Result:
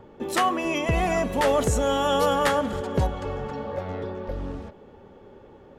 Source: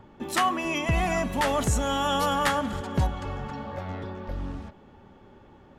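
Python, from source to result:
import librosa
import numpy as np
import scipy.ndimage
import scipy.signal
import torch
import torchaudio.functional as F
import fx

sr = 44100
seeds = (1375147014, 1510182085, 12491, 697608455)

y = fx.peak_eq(x, sr, hz=470.0, db=11.0, octaves=0.66)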